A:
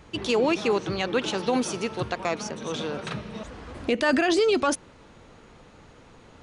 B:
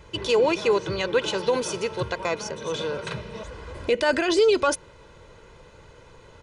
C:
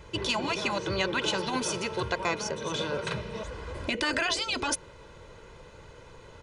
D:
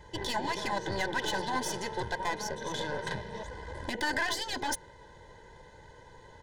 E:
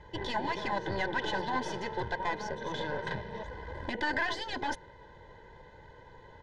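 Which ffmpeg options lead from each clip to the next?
-af "aecho=1:1:2:0.63"
-af "afftfilt=real='re*lt(hypot(re,im),0.398)':imag='im*lt(hypot(re,im),0.398)':win_size=1024:overlap=0.75"
-af "aeval=exprs='(tanh(20*val(0)+0.75)-tanh(0.75))/20':c=same,superequalizer=9b=2:10b=0.316:11b=1.78:12b=0.355"
-af "lowpass=3.4k"

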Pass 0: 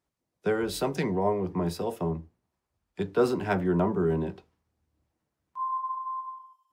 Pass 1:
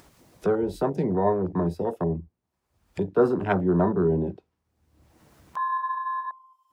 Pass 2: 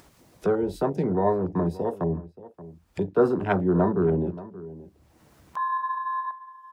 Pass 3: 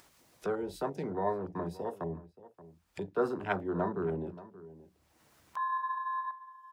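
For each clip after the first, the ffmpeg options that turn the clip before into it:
-af "afwtdn=0.0224,acompressor=mode=upward:threshold=-29dB:ratio=2.5,volume=3.5dB"
-filter_complex "[0:a]asplit=2[a][b];[b]adelay=577.3,volume=-17dB,highshelf=f=4k:g=-13[c];[a][c]amix=inputs=2:normalize=0"
-af "tiltshelf=f=680:g=-5,bandreject=f=60:t=h:w=6,bandreject=f=120:t=h:w=6,bandreject=f=180:t=h:w=6,volume=-8dB"

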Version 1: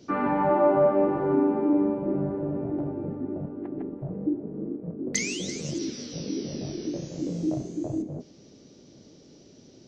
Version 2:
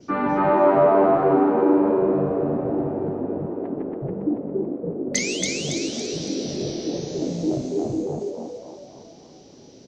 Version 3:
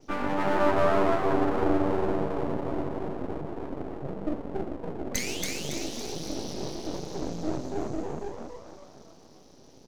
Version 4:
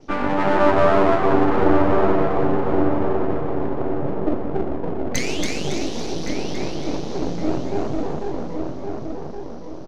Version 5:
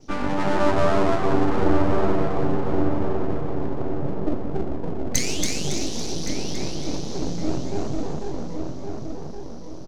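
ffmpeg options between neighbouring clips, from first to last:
-filter_complex "[0:a]adynamicequalizer=threshold=0.00141:dfrequency=3900:dqfactor=2.9:tfrequency=3900:tqfactor=2.9:attack=5:release=100:ratio=0.375:range=3:mode=boostabove:tftype=bell,asplit=7[a][b][c][d][e][f][g];[b]adelay=279,afreqshift=86,volume=-3dB[h];[c]adelay=558,afreqshift=172,volume=-10.3dB[i];[d]adelay=837,afreqshift=258,volume=-17.7dB[j];[e]adelay=1116,afreqshift=344,volume=-25dB[k];[f]adelay=1395,afreqshift=430,volume=-32.3dB[l];[g]adelay=1674,afreqshift=516,volume=-39.7dB[m];[a][h][i][j][k][l][m]amix=inputs=7:normalize=0,volume=3dB"
-af "aeval=exprs='max(val(0),0)':c=same,volume=-3dB"
-filter_complex "[0:a]adynamicsmooth=sensitivity=1.5:basefreq=5.7k,asplit=2[a][b];[b]adelay=1118,lowpass=f=2.2k:p=1,volume=-5dB,asplit=2[c][d];[d]adelay=1118,lowpass=f=2.2k:p=1,volume=0.37,asplit=2[e][f];[f]adelay=1118,lowpass=f=2.2k:p=1,volume=0.37,asplit=2[g][h];[h]adelay=1118,lowpass=f=2.2k:p=1,volume=0.37,asplit=2[i][j];[j]adelay=1118,lowpass=f=2.2k:p=1,volume=0.37[k];[c][e][g][i][k]amix=inputs=5:normalize=0[l];[a][l]amix=inputs=2:normalize=0,volume=7.5dB"
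-af "bass=f=250:g=6,treble=f=4k:g=13,volume=-5.5dB"

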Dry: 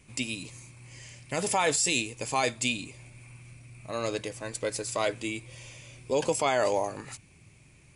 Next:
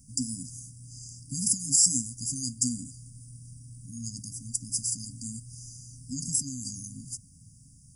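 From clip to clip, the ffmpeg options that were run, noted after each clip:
-af "afftfilt=real='re*(1-between(b*sr/4096,280,4700))':imag='im*(1-between(b*sr/4096,280,4700))':win_size=4096:overlap=0.75,highshelf=f=8.9k:g=10.5,volume=2.5dB"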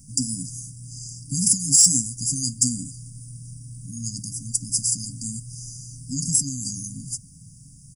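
-af "aecho=1:1:6.2:0.35,acontrast=79"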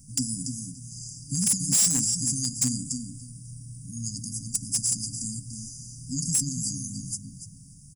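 -filter_complex "[0:a]asplit=2[a][b];[b]adelay=289,lowpass=f=4.5k:p=1,volume=-5dB,asplit=2[c][d];[d]adelay=289,lowpass=f=4.5k:p=1,volume=0.18,asplit=2[e][f];[f]adelay=289,lowpass=f=4.5k:p=1,volume=0.18[g];[a][c][e][g]amix=inputs=4:normalize=0,volume=15dB,asoftclip=hard,volume=-15dB,volume=-2.5dB"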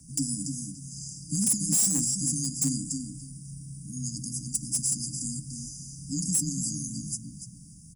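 -filter_complex "[0:a]acrossover=split=850|7100[a][b][c];[b]alimiter=level_in=5.5dB:limit=-24dB:level=0:latency=1:release=80,volume=-5.5dB[d];[a][d][c]amix=inputs=3:normalize=0,afreqshift=18"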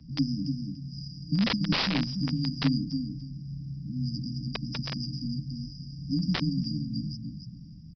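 -af "aeval=exprs='(mod(7.08*val(0)+1,2)-1)/7.08':c=same,aresample=11025,aresample=44100,volume=4.5dB"

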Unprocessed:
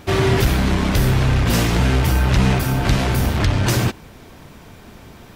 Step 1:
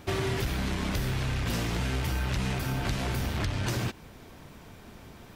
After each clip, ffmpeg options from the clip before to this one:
-filter_complex "[0:a]acrossover=split=1600|6600[a][b][c];[a]acompressor=threshold=-21dB:ratio=4[d];[b]acompressor=threshold=-30dB:ratio=4[e];[c]acompressor=threshold=-39dB:ratio=4[f];[d][e][f]amix=inputs=3:normalize=0,volume=-7dB"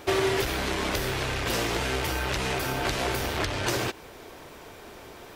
-af "lowshelf=f=280:t=q:w=1.5:g=-9,volume=6dB"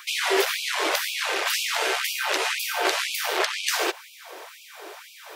-af "afftfilt=real='re*gte(b*sr/1024,300*pow(2300/300,0.5+0.5*sin(2*PI*2*pts/sr)))':imag='im*gte(b*sr/1024,300*pow(2300/300,0.5+0.5*sin(2*PI*2*pts/sr)))':win_size=1024:overlap=0.75,volume=6dB"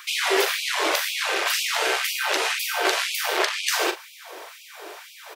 -filter_complex "[0:a]asplit=2[a][b];[b]adelay=40,volume=-9.5dB[c];[a][c]amix=inputs=2:normalize=0,volume=1dB"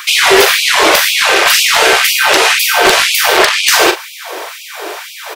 -af "aeval=exprs='0.501*sin(PI/2*2.24*val(0)/0.501)':c=same,volume=5dB"

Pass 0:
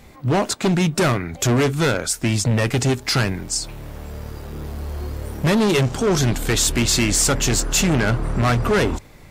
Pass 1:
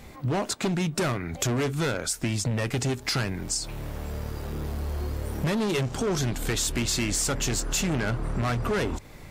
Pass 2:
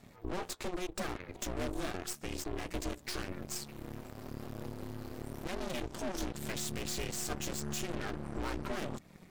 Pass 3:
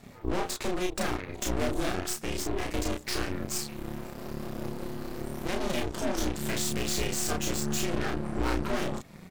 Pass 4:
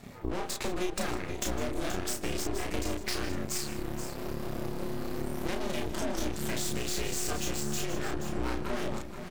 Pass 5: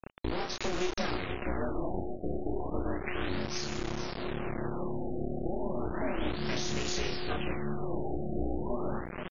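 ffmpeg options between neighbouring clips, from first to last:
-af "acompressor=threshold=-27dB:ratio=3"
-af "flanger=delay=1.9:depth=5.3:regen=46:speed=0.89:shape=sinusoidal,aeval=exprs='val(0)*sin(2*PI*180*n/s)':c=same,aeval=exprs='0.1*(cos(1*acos(clip(val(0)/0.1,-1,1)))-cos(1*PI/2))+0.0178*(cos(8*acos(clip(val(0)/0.1,-1,1)))-cos(8*PI/2))':c=same,volume=-6dB"
-filter_complex "[0:a]asplit=2[a][b];[b]adelay=33,volume=-2.5dB[c];[a][c]amix=inputs=2:normalize=0,volume=5.5dB"
-af "acompressor=threshold=-30dB:ratio=6,aecho=1:1:154|159|478:0.1|0.15|0.316,volume=2dB"
-af "acrusher=bits=5:mix=0:aa=0.000001,afftfilt=real='re*lt(b*sr/1024,770*pow(7200/770,0.5+0.5*sin(2*PI*0.33*pts/sr)))':imag='im*lt(b*sr/1024,770*pow(7200/770,0.5+0.5*sin(2*PI*0.33*pts/sr)))':win_size=1024:overlap=0.75"

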